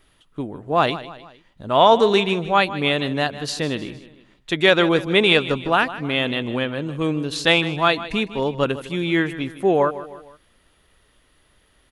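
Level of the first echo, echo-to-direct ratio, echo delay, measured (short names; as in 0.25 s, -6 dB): -15.0 dB, -14.0 dB, 0.155 s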